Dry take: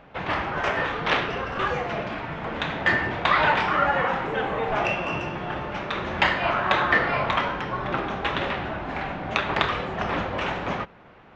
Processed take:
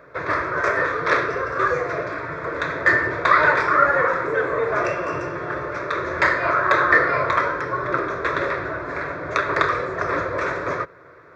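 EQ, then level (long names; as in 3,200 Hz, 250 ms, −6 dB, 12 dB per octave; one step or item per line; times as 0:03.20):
high-pass filter 110 Hz 12 dB per octave
phaser with its sweep stopped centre 800 Hz, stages 6
+7.0 dB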